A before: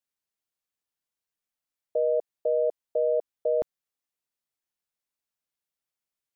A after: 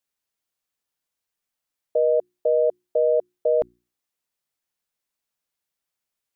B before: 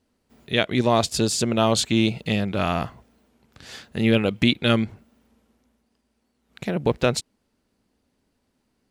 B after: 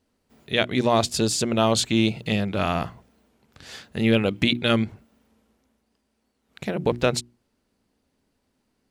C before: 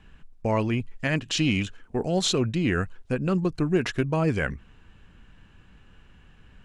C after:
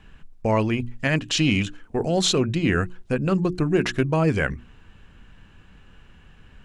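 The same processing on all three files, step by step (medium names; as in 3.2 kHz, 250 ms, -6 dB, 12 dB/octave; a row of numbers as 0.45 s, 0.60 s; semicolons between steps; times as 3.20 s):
hum notches 60/120/180/240/300/360 Hz; normalise loudness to -23 LUFS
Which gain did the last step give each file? +5.0 dB, -0.5 dB, +3.5 dB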